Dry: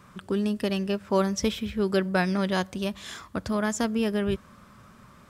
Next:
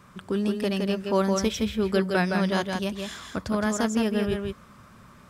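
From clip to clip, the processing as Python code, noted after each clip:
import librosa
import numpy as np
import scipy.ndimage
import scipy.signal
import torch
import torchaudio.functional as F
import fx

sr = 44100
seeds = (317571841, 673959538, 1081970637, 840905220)

y = fx.echo_multitap(x, sr, ms=(154, 166), db=(-19.0, -4.5))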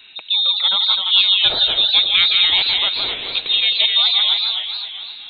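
y = fx.spec_gate(x, sr, threshold_db=-30, keep='strong')
y = fx.freq_invert(y, sr, carrier_hz=3900)
y = fx.echo_warbled(y, sr, ms=261, feedback_pct=54, rate_hz=2.8, cents=171, wet_db=-7)
y = y * librosa.db_to_amplitude(8.0)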